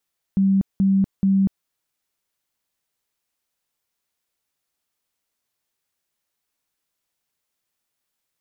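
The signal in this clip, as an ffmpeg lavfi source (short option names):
-f lavfi -i "aevalsrc='0.2*sin(2*PI*194*mod(t,0.43))*lt(mod(t,0.43),47/194)':d=1.29:s=44100"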